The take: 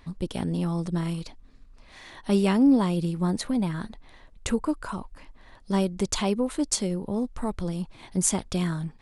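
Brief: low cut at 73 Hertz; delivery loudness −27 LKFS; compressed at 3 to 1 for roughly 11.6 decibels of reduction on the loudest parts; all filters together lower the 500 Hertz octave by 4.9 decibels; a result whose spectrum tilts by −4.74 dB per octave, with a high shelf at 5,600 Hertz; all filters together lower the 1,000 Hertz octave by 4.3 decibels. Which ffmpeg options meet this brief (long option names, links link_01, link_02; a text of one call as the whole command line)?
ffmpeg -i in.wav -af "highpass=73,equalizer=frequency=500:width_type=o:gain=-6,equalizer=frequency=1000:width_type=o:gain=-3.5,highshelf=frequency=5600:gain=5,acompressor=threshold=-33dB:ratio=3,volume=8.5dB" out.wav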